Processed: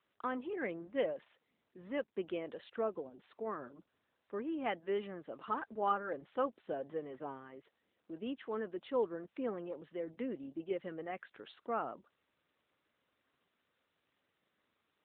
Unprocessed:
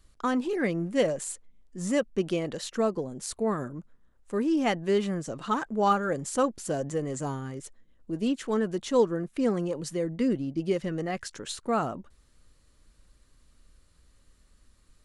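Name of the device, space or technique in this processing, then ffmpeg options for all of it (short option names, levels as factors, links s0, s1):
telephone: -filter_complex "[0:a]asplit=3[s0][s1][s2];[s0]afade=t=out:st=6.67:d=0.02[s3];[s1]adynamicequalizer=threshold=0.00224:dfrequency=190:dqfactor=4.2:tfrequency=190:tqfactor=4.2:attack=5:release=100:ratio=0.375:range=2.5:mode=boostabove:tftype=bell,afade=t=in:st=6.67:d=0.02,afade=t=out:st=7.16:d=0.02[s4];[s2]afade=t=in:st=7.16:d=0.02[s5];[s3][s4][s5]amix=inputs=3:normalize=0,highpass=330,lowpass=3200,volume=0.398" -ar 8000 -c:a libopencore_amrnb -b:a 12200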